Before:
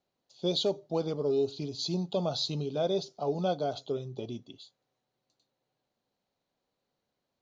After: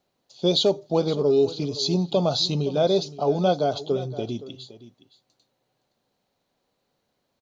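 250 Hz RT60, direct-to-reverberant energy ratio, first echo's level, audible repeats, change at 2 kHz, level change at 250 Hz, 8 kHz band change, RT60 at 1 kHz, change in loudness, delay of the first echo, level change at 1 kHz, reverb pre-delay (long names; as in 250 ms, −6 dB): no reverb audible, no reverb audible, −16.5 dB, 1, +8.5 dB, +8.5 dB, can't be measured, no reverb audible, +8.5 dB, 517 ms, +8.5 dB, no reverb audible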